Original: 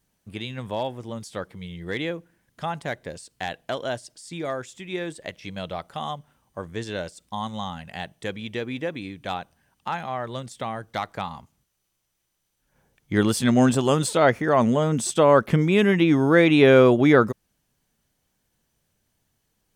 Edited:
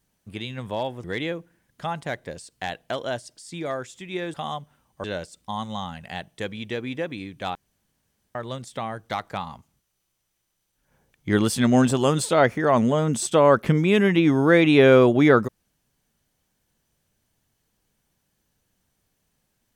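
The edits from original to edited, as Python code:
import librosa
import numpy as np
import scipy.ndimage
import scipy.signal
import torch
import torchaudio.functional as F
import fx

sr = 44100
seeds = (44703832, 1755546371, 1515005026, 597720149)

y = fx.edit(x, sr, fx.cut(start_s=1.04, length_s=0.79),
    fx.cut(start_s=5.13, length_s=0.78),
    fx.cut(start_s=6.61, length_s=0.27),
    fx.room_tone_fill(start_s=9.39, length_s=0.8), tone=tone)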